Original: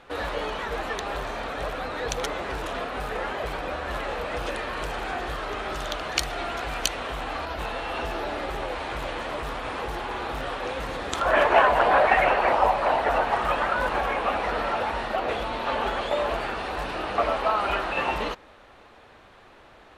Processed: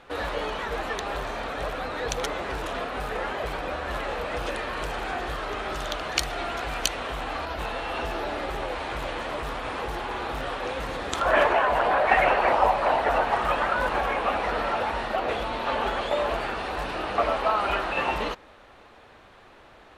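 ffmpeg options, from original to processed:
-filter_complex "[0:a]asettb=1/sr,asplit=3[a][b][c];[a]atrim=end=11.484[d];[b]atrim=start=11.48:end=12.09,asetpts=PTS-STARTPTS,afade=t=in:d=0.004:c=qsin,afade=t=out:st=0.606:d=0.004:c=qsin,acompressor=threshold=-19dB:ratio=2.5:attack=3.2:release=140:knee=1:detection=peak[e];[c]atrim=start=12.086[f];[d][e]acrossfade=d=0.004:c1=hsin:c2=qsin[g];[g][f]acrossfade=d=0.004:c1=qsin:c2=hsin"

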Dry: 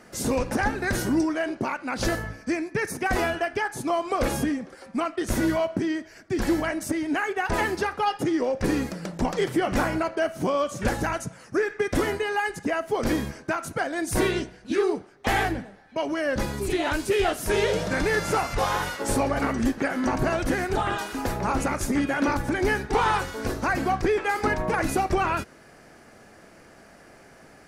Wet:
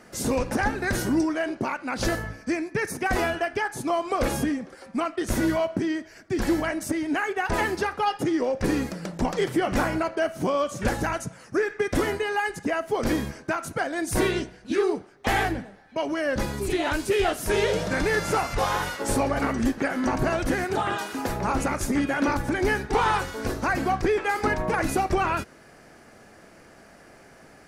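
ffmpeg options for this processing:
-filter_complex "[0:a]asettb=1/sr,asplit=3[a][b][c];[a]atrim=end=20.644[d];[b]atrim=start=20.64:end=21.29,asetpts=PTS-STARTPTS,afade=t=in:d=0.004:c=qsin,afade=t=out:st=0.646:d=0.004:c=qsin,highpass=110[e];[c]atrim=start=21.286[f];[d][e]acrossfade=d=0.004:c1=hsin:c2=qsin[g];[g][f]acrossfade=d=0.004:c1=qsin:c2=hsin"

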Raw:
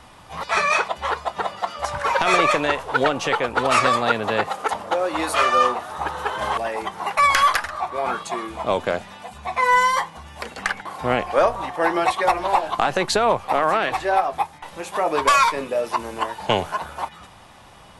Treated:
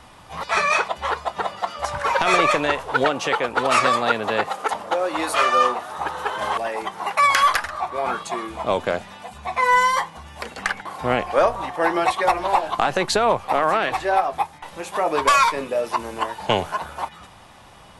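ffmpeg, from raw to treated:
-filter_complex "[0:a]asettb=1/sr,asplit=3[a][b][c];[a]atrim=end=3.054[d];[b]atrim=start=3.05:end=7.44,asetpts=PTS-STARTPTS,afade=t=in:d=0.004:c=qsin,afade=t=out:st=4.386:d=0.004:c=qsin,highpass=f=150:p=1[e];[c]atrim=start=7.436[f];[d][e]acrossfade=d=0.004:c1=hsin:c2=qsin[g];[g][f]acrossfade=d=0.004:c1=qsin:c2=hsin"

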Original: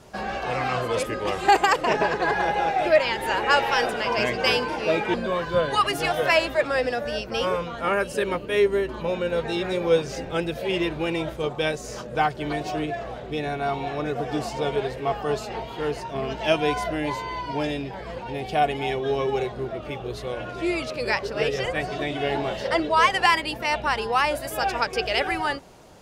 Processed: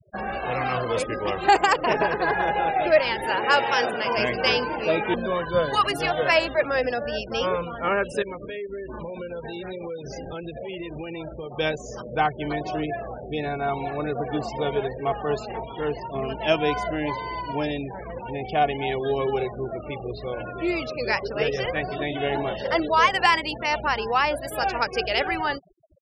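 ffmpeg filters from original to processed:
-filter_complex "[0:a]asettb=1/sr,asplit=3[a][b][c];[a]atrim=end=3.254[d];[b]atrim=start=3.25:end=4.15,asetpts=PTS-STARTPTS,afade=t=in:d=0.004:c=qsin,afade=t=out:st=0.896:d=0.004:c=qsin,highpass=100[e];[c]atrim=start=4.146[f];[d][e]acrossfade=d=0.004:c1=hsin:c2=qsin[g];[g][f]acrossfade=d=0.004:c1=qsin:c2=hsin,asettb=1/sr,asplit=3[h][i][j];[h]atrim=end=8.224[k];[i]atrim=start=8.22:end=11.57,asetpts=PTS-STARTPTS,afade=t=in:d=0.004:c=qsin,afade=t=out:st=3.346:d=0.004:c=qsin,acompressor=threshold=-30dB:ratio=8:attack=3.2:release=140:knee=1:detection=peak[l];[j]atrim=start=11.566[m];[k][l]acrossfade=d=0.004:c1=hsin:c2=qsin[n];[n][m]acrossfade=d=0.004:c1=qsin:c2=hsin,afftfilt=real='re*gte(hypot(re,im),0.02)':imag='im*gte(hypot(re,im),0.02)':win_size=1024:overlap=0.75"

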